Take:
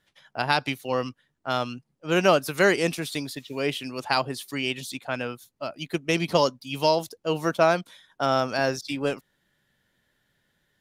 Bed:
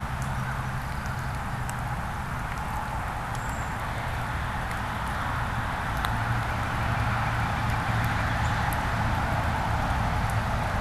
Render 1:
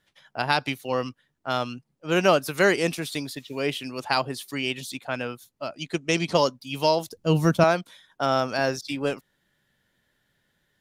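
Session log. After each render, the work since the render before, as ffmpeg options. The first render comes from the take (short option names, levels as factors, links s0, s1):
-filter_complex "[0:a]asettb=1/sr,asplit=3[s0][s1][s2];[s0]atrim=end=5.674[s3];[s1]atrim=start=5.67:end=6.34,asetpts=PTS-STARTPTS,afade=t=in:d=0.004:c=qsin,afade=t=out:st=0.666:d=0.004:c=qsin,lowpass=f=7500:t=q:w=1.7[s4];[s2]atrim=start=6.336[s5];[s3][s4]acrossfade=d=0.004:c1=hsin:c2=qsin[s6];[s6][s5]acrossfade=d=0.004:c1=qsin:c2=hsin,asettb=1/sr,asplit=3[s7][s8][s9];[s7]atrim=end=7.124[s10];[s8]atrim=start=7.12:end=7.64,asetpts=PTS-STARTPTS,afade=t=in:d=0.004:c=qsin,afade=t=out:st=0.516:d=0.004:c=qsin,bass=f=250:g=15,treble=f=4000:g=4[s11];[s9]atrim=start=7.636[s12];[s10][s11]acrossfade=d=0.004:c1=hsin:c2=qsin[s13];[s13][s12]acrossfade=d=0.004:c1=qsin:c2=hsin"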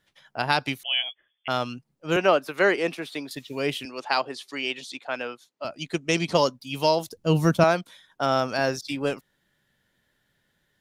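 -filter_complex "[0:a]asettb=1/sr,asplit=3[s0][s1][s2];[s0]atrim=end=0.834[s3];[s1]atrim=start=0.83:end=1.48,asetpts=PTS-STARTPTS,afade=t=in:d=0.004:c=qsin,afade=t=out:st=0.646:d=0.004:c=qsin,lowpass=f=3000:t=q:w=0.5098,lowpass=f=3000:t=q:w=0.6013,lowpass=f=3000:t=q:w=0.9,lowpass=f=3000:t=q:w=2.563,afreqshift=-3500[s4];[s2]atrim=start=1.476[s5];[s3][s4]acrossfade=d=0.004:c1=hsin:c2=qsin[s6];[s6][s5]acrossfade=d=0.004:c1=qsin:c2=hsin,asettb=1/sr,asplit=3[s7][s8][s9];[s7]atrim=end=2.164[s10];[s8]atrim=start=2.16:end=3.31,asetpts=PTS-STARTPTS,afade=t=in:d=0.004:c=qsin,afade=t=out:st=1.146:d=0.004:c=qsin,acrossover=split=230 3500:gain=0.158 1 0.224[s11][s12][s13];[s11][s12][s13]amix=inputs=3:normalize=0[s14];[s9]atrim=start=3.306[s15];[s10][s14]acrossfade=d=0.004:c1=hsin:c2=qsin[s16];[s16][s15]acrossfade=d=0.004:c1=qsin:c2=hsin,asettb=1/sr,asplit=3[s17][s18][s19];[s17]atrim=end=3.854[s20];[s18]atrim=start=3.85:end=5.65,asetpts=PTS-STARTPTS,afade=t=in:d=0.004:c=qsin,afade=t=out:st=1.796:d=0.004:c=qsin,highpass=330,lowpass=6100[s21];[s19]atrim=start=5.646[s22];[s20][s21]acrossfade=d=0.004:c1=hsin:c2=qsin[s23];[s23][s22]acrossfade=d=0.004:c1=qsin:c2=hsin"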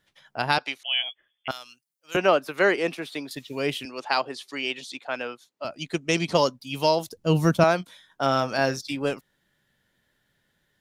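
-filter_complex "[0:a]asettb=1/sr,asplit=3[s0][s1][s2];[s0]atrim=end=0.584[s3];[s1]atrim=start=0.58:end=1.01,asetpts=PTS-STARTPTS,afade=t=in:d=0.004:c=qsin,afade=t=out:st=0.426:d=0.004:c=qsin,highpass=520,lowpass=6500[s4];[s2]atrim=start=1.006[s5];[s3][s4]acrossfade=d=0.004:c1=hsin:c2=qsin[s6];[s6][s5]acrossfade=d=0.004:c1=qsin:c2=hsin,asettb=1/sr,asplit=3[s7][s8][s9];[s7]atrim=end=1.514[s10];[s8]atrim=start=1.51:end=2.15,asetpts=PTS-STARTPTS,afade=t=in:d=0.004:c=qsin,afade=t=out:st=0.636:d=0.004:c=qsin,aderivative[s11];[s9]atrim=start=2.146[s12];[s10][s11]acrossfade=d=0.004:c1=hsin:c2=qsin[s13];[s13][s12]acrossfade=d=0.004:c1=qsin:c2=hsin,asettb=1/sr,asplit=3[s14][s15][s16];[s14]atrim=end=7.774[s17];[s15]atrim=start=7.77:end=8.82,asetpts=PTS-STARTPTS,afade=t=in:d=0.004:c=qsin,afade=t=out:st=1.046:d=0.004:c=qsin,asplit=2[s18][s19];[s19]adelay=22,volume=0.282[s20];[s18][s20]amix=inputs=2:normalize=0,atrim=end_sample=46305[s21];[s16]atrim=start=8.816[s22];[s17][s21]acrossfade=d=0.004:c1=hsin:c2=qsin[s23];[s23][s22]acrossfade=d=0.004:c1=qsin:c2=hsin"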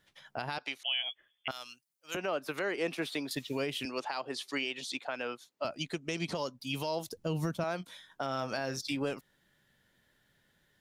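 -af "acompressor=threshold=0.0447:ratio=4,alimiter=limit=0.0708:level=0:latency=1:release=161"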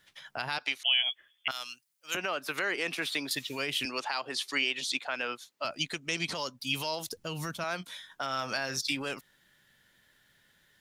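-filter_complex "[0:a]acrossover=split=1100[s0][s1];[s0]alimiter=level_in=2.37:limit=0.0631:level=0:latency=1,volume=0.422[s2];[s1]acontrast=77[s3];[s2][s3]amix=inputs=2:normalize=0"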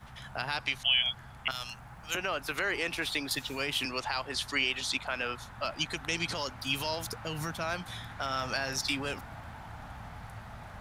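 -filter_complex "[1:a]volume=0.119[s0];[0:a][s0]amix=inputs=2:normalize=0"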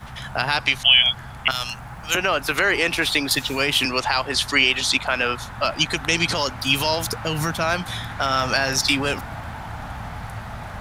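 -af "volume=3.98"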